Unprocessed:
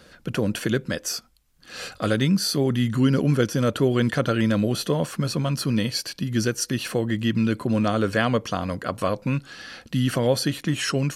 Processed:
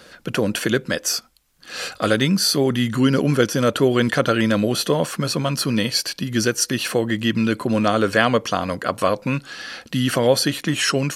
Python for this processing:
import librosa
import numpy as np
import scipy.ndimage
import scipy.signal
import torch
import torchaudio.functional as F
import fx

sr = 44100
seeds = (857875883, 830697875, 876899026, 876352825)

y = fx.low_shelf(x, sr, hz=200.0, db=-10.0)
y = y * 10.0 ** (6.5 / 20.0)